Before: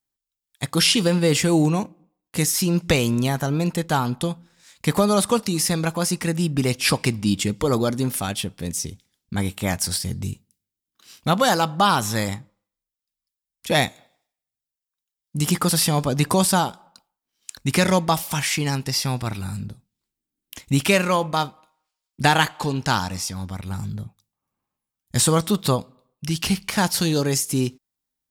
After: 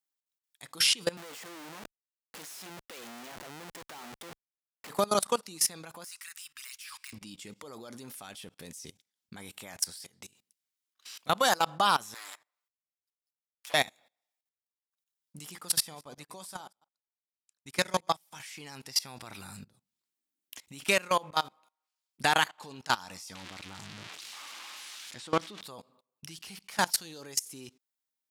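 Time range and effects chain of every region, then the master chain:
0:01.17–0:04.90: high-pass filter 230 Hz + comparator with hysteresis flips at −33 dBFS
0:06.04–0:07.13: de-essing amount 55% + inverse Chebyshev band-stop filter 120–680 Hz + high-shelf EQ 9,500 Hz +10.5 dB
0:10.04–0:11.27: high-pass filter 43 Hz + downward compressor 3 to 1, threshold −38 dBFS + mid-hump overdrive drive 15 dB, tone 7,800 Hz, clips at −20 dBFS
0:12.14–0:13.74: lower of the sound and its delayed copy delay 6.8 ms + high-pass filter 920 Hz
0:15.80–0:18.40: delay that plays each chunk backwards 116 ms, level −13 dB + notch filter 2,800 Hz, Q 14 + expander for the loud parts 2.5 to 1, over −34 dBFS
0:23.35–0:25.61: spike at every zero crossing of −12.5 dBFS + Chebyshev low-pass filter 3,200 Hz + parametric band 310 Hz +7.5 dB 0.31 octaves
whole clip: high-pass filter 660 Hz 6 dB per octave; output level in coarse steps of 22 dB; level −1.5 dB

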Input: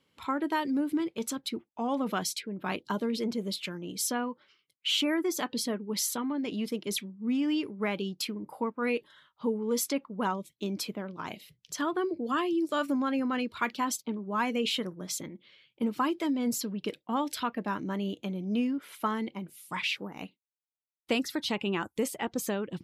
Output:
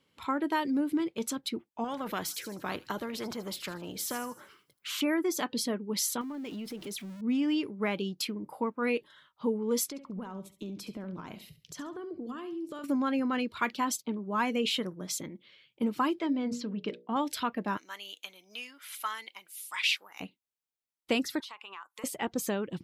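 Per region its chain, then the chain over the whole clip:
0:01.84–0:05.01: flat-topped bell 4,900 Hz −12.5 dB 2.8 octaves + delay with a high-pass on its return 78 ms, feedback 46%, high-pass 5,500 Hz, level −12.5 dB + every bin compressed towards the loudest bin 2 to 1
0:06.21–0:07.21: converter with a step at zero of −43.5 dBFS + downward compressor 3 to 1, threshold −38 dBFS
0:09.88–0:12.84: downward compressor 8 to 1, threshold −41 dBFS + low-shelf EQ 350 Hz +8.5 dB + repeating echo 69 ms, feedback 26%, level −13 dB
0:16.19–0:17.16: high-frequency loss of the air 140 metres + mains-hum notches 60/120/180/240/300/360/420/480/540/600 Hz
0:17.77–0:20.20: high-pass filter 1,300 Hz + high-shelf EQ 3,100 Hz +8 dB
0:21.40–0:22.04: high-pass with resonance 1,100 Hz, resonance Q 4.3 + downward compressor, threshold −42 dBFS
whole clip: no processing

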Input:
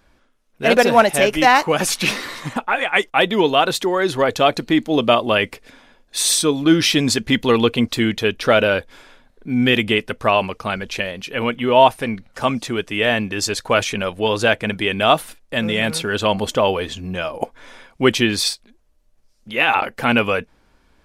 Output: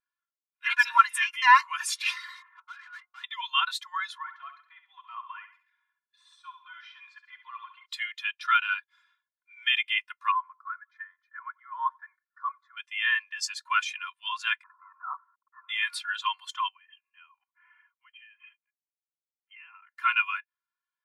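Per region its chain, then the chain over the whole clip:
0:02.42–0:03.24: Chebyshev low-pass filter 1,800 Hz, order 3 + hum removal 89.98 Hz, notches 10 + tube saturation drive 28 dB, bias 0.6
0:04.18–0:07.86: de-essing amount 85% + low-pass filter 1,300 Hz 6 dB per octave + flutter between parallel walls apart 11.5 metres, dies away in 0.59 s
0:10.31–0:12.77: low-pass filter 1,900 Hz + phaser with its sweep stopped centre 540 Hz, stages 8 + repeating echo 91 ms, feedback 43%, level −22 dB
0:14.63–0:15.69: linear delta modulator 32 kbit/s, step −26.5 dBFS + elliptic low-pass filter 1,300 Hz, stop band 80 dB
0:16.68–0:19.92: linear-phase brick-wall low-pass 3,200 Hz + downward compressor 5 to 1, threshold −33 dBFS
whole clip: Butterworth high-pass 960 Hz 72 dB per octave; comb filter 2.9 ms, depth 88%; every bin expanded away from the loudest bin 1.5 to 1; level −4.5 dB

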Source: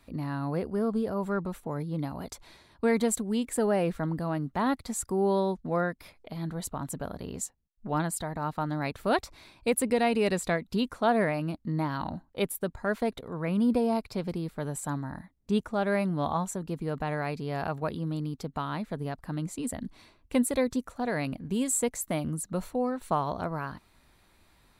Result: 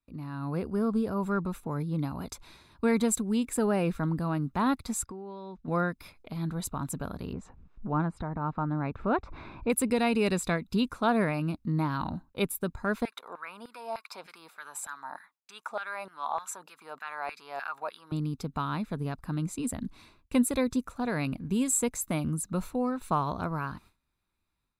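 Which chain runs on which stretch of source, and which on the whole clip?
0:05.05–0:05.68: low-pass filter 3,800 Hz + low-shelf EQ 380 Hz −6 dB + downward compressor 16 to 1, threshold −37 dBFS
0:07.33–0:09.70: low-pass filter 1,400 Hz + upward compression, threshold −32 dBFS
0:13.05–0:18.12: notch filter 1,100 Hz, Q 30 + downward compressor 2.5 to 1, threshold −32 dBFS + auto-filter high-pass saw down 3.3 Hz 600–1,800 Hz
whole clip: noise gate with hold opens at −49 dBFS; comb filter 0.8 ms, depth 37%; automatic gain control gain up to 8 dB; level −8 dB

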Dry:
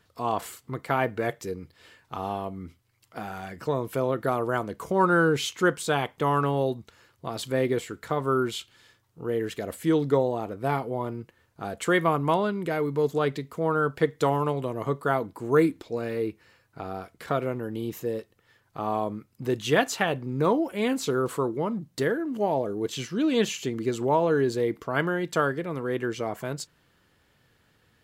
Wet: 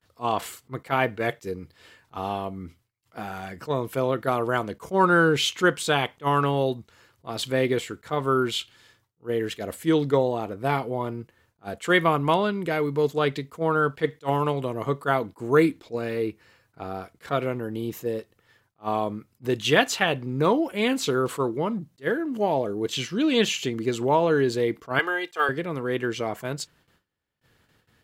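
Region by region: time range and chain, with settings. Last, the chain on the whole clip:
0:24.99–0:25.49: de-essing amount 75% + high-pass filter 550 Hz + comb filter 2.5 ms, depth 61%
whole clip: noise gate with hold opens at −54 dBFS; dynamic equaliser 3,000 Hz, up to +6 dB, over −44 dBFS, Q 0.97; level that may rise only so fast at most 420 dB per second; level +1.5 dB

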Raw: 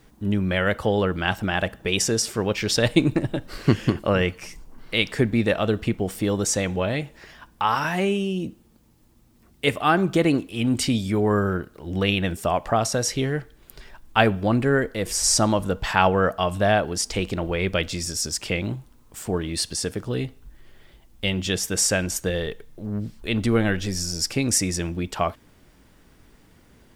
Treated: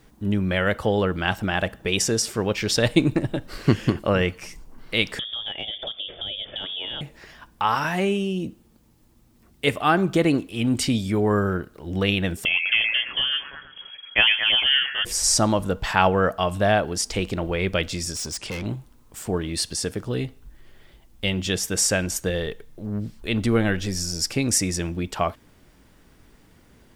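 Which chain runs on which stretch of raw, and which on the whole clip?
0:05.19–0:07.01: voice inversion scrambler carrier 3,500 Hz + low shelf with overshoot 780 Hz +7 dB, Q 3 + downward compressor, threshold −28 dBFS
0:12.45–0:15.05: high-frequency loss of the air 190 metres + echo through a band-pass that steps 114 ms, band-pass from 980 Hz, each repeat 0.7 octaves, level −1 dB + voice inversion scrambler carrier 3,300 Hz
0:18.15–0:18.66: linear-phase brick-wall low-pass 11,000 Hz + gain into a clipping stage and back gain 27.5 dB
whole clip: no processing

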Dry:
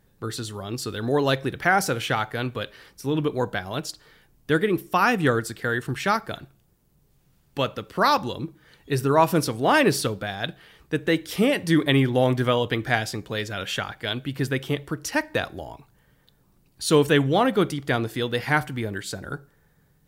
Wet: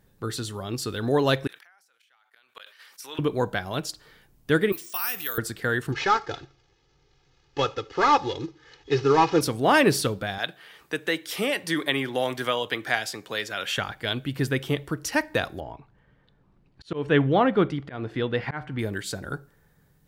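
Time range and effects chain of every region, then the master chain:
0:01.47–0:03.19: high-pass filter 1,200 Hz + gate with flip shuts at −25 dBFS, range −37 dB + level that may fall only so fast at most 69 dB per second
0:04.72–0:05.38: first difference + bad sample-rate conversion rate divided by 3×, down filtered, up zero stuff + envelope flattener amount 50%
0:05.92–0:09.41: variable-slope delta modulation 32 kbit/s + low-shelf EQ 140 Hz −6.5 dB + comb filter 2.4 ms, depth 81%
0:10.38–0:13.78: high-pass filter 750 Hz 6 dB per octave + multiband upward and downward compressor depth 40%
0:15.60–0:18.79: low-pass filter 2,600 Hz + volume swells 235 ms
whole clip: no processing

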